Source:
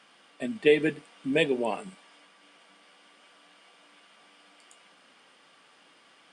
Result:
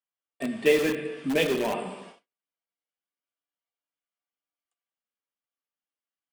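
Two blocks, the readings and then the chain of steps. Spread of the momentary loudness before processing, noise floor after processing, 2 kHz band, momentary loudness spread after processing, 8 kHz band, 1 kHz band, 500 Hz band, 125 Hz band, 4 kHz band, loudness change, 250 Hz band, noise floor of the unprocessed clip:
15 LU, below −85 dBFS, +0.5 dB, 14 LU, +9.0 dB, +2.0 dB, +0.5 dB, +0.5 dB, +1.5 dB, +1.0 dB, +1.0 dB, −60 dBFS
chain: spectral magnitudes quantised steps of 15 dB
dense smooth reverb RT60 1.2 s, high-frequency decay 1×, DRR 6 dB
dynamic equaliser 6,200 Hz, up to −8 dB, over −57 dBFS, Q 1.6
in parallel at −8.5 dB: wrap-around overflow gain 24 dB
on the sum: noise gate −46 dBFS, range −45 dB

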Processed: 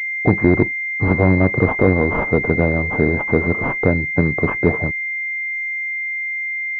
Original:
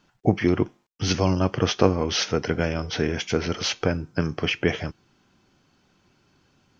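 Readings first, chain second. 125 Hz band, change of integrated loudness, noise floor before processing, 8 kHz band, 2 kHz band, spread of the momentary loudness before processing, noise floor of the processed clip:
+7.5 dB, +6.5 dB, −65 dBFS, can't be measured, +14.5 dB, 6 LU, −24 dBFS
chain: harmonic generator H 3 −24 dB, 5 −8 dB, 6 −14 dB, 7 −45 dB, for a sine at −1.5 dBFS
slack as between gear wheels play −37.5 dBFS
switching amplifier with a slow clock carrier 2,100 Hz
level −1 dB

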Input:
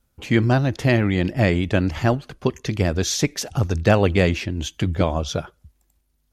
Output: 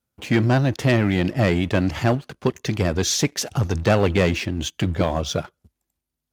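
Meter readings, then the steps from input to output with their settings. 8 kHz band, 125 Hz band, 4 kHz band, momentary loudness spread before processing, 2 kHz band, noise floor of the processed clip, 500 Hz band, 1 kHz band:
+2.0 dB, −1.0 dB, +1.5 dB, 8 LU, −0.5 dB, −83 dBFS, −0.5 dB, 0.0 dB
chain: leveller curve on the samples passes 2
high-pass filter 88 Hz
level −5.5 dB

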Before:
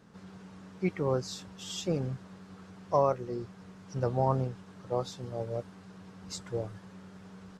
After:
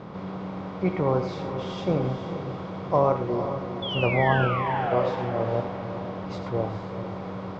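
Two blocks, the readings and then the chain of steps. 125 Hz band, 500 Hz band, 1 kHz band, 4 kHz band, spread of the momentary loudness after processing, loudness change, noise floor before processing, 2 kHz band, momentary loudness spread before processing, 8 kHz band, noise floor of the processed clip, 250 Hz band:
+7.0 dB, +7.0 dB, +8.5 dB, +7.0 dB, 12 LU, +6.0 dB, −53 dBFS, +17.5 dB, 21 LU, below −10 dB, −36 dBFS, +8.0 dB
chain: compressor on every frequency bin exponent 0.6
high-shelf EQ 6,300 Hz −10 dB
sound drawn into the spectrogram fall, 0:03.82–0:05.15, 470–3,500 Hz −32 dBFS
high-frequency loss of the air 220 metres
on a send: feedback delay with all-pass diffusion 452 ms, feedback 47%, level −9 dB
on the sum: reverb whose tail is shaped and stops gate 130 ms rising, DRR 7 dB
level +3.5 dB

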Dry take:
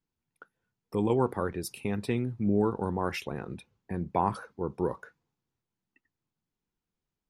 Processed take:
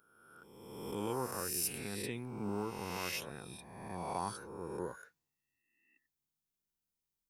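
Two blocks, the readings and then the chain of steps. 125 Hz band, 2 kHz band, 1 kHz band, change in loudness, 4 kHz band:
−12.0 dB, −3.5 dB, −8.5 dB, −8.5 dB, +1.5 dB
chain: peak hold with a rise ahead of every peak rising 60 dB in 1.38 s
first-order pre-emphasis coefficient 0.8

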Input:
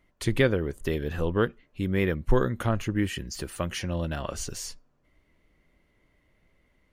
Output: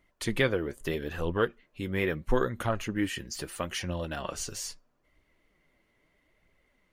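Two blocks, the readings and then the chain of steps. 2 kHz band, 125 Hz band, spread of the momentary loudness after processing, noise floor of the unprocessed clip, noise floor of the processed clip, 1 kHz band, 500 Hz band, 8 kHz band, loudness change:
−0.5 dB, −6.5 dB, 8 LU, −68 dBFS, −72 dBFS, −0.5 dB, −2.5 dB, −0.5 dB, −3.0 dB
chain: low-shelf EQ 270 Hz −7.5 dB
flanger 0.77 Hz, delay 0.1 ms, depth 9.5 ms, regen +55%
level +4 dB

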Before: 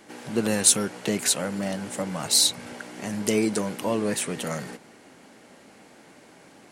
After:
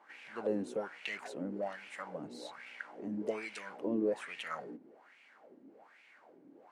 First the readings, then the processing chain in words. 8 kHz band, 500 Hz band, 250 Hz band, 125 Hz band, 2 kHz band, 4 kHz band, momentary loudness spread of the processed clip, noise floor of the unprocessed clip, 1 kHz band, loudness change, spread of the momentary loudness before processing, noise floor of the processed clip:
−35.5 dB, −9.0 dB, −11.5 dB, −17.5 dB, −9.0 dB, −24.0 dB, 15 LU, −52 dBFS, −10.0 dB, −15.5 dB, 15 LU, −63 dBFS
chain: LFO wah 1.2 Hz 270–2,500 Hz, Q 4.6
level +1.5 dB

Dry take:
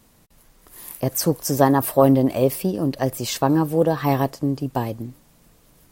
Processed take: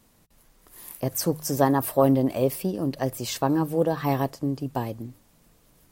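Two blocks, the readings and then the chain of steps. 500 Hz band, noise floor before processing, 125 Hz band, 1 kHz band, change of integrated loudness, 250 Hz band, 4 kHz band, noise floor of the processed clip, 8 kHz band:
−4.5 dB, −56 dBFS, −5.0 dB, −4.5 dB, −4.5 dB, −4.5 dB, −4.5 dB, −61 dBFS, −4.5 dB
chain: hum removal 51.3 Hz, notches 3
level −4.5 dB

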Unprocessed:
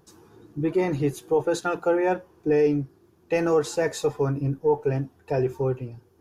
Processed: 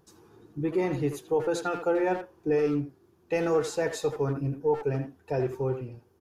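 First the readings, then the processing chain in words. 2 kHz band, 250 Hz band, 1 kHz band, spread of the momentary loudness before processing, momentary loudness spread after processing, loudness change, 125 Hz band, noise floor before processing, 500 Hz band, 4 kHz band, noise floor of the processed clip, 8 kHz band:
−3.0 dB, −3.5 dB, −3.5 dB, 7 LU, 7 LU, −3.5 dB, −4.0 dB, −60 dBFS, −4.0 dB, −3.5 dB, −64 dBFS, −4.0 dB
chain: far-end echo of a speakerphone 80 ms, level −7 dB
level −4 dB

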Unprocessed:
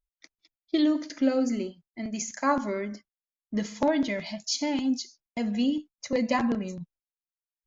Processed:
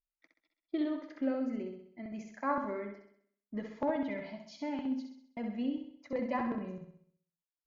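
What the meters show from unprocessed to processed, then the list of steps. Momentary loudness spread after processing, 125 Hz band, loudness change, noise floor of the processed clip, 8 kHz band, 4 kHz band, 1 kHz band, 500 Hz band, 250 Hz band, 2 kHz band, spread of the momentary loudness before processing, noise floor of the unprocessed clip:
12 LU, −9.0 dB, −8.5 dB, below −85 dBFS, can't be measured, −19.5 dB, −6.5 dB, −7.5 dB, −9.0 dB, −9.5 dB, 12 LU, below −85 dBFS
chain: low-pass filter 1,800 Hz 12 dB per octave
low-shelf EQ 350 Hz −4 dB
on a send: flutter between parallel walls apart 11.1 metres, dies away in 0.64 s
on the sum: level −7 dB

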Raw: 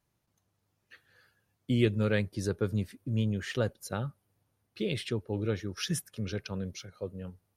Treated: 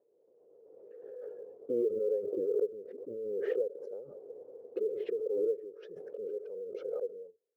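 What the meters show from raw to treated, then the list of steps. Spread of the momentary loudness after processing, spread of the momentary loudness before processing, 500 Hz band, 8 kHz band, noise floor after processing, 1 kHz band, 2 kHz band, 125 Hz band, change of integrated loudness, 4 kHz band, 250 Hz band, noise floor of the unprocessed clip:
16 LU, 13 LU, +3.5 dB, below −30 dB, −70 dBFS, below −15 dB, −17.5 dB, below −30 dB, −3.0 dB, below −25 dB, −11.0 dB, −79 dBFS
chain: flat-topped band-pass 460 Hz, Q 4.3
floating-point word with a short mantissa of 6 bits
background raised ahead of every attack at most 25 dB per second
level +2.5 dB

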